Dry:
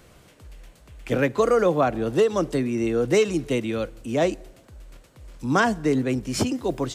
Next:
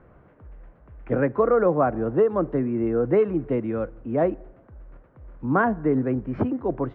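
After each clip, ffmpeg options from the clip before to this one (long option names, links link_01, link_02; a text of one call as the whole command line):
ffmpeg -i in.wav -af "lowpass=frequency=1600:width=0.5412,lowpass=frequency=1600:width=1.3066" out.wav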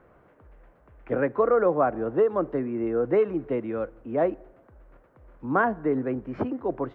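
ffmpeg -i in.wav -af "bass=frequency=250:gain=-8,treble=frequency=4000:gain=6,volume=-1dB" out.wav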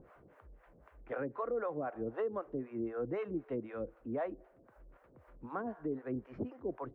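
ffmpeg -i in.wav -filter_complex "[0:a]acrossover=split=540[link_01][link_02];[link_01]aeval=exprs='val(0)*(1-1/2+1/2*cos(2*PI*3.9*n/s))':channel_layout=same[link_03];[link_02]aeval=exprs='val(0)*(1-1/2-1/2*cos(2*PI*3.9*n/s))':channel_layout=same[link_04];[link_03][link_04]amix=inputs=2:normalize=0,alimiter=level_in=0.5dB:limit=-24dB:level=0:latency=1:release=330,volume=-0.5dB,acompressor=mode=upward:threshold=-50dB:ratio=2.5,volume=-3.5dB" out.wav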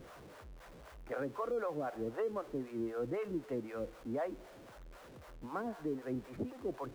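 ffmpeg -i in.wav -af "aeval=exprs='val(0)+0.5*0.00299*sgn(val(0))':channel_layout=same,volume=-1dB" out.wav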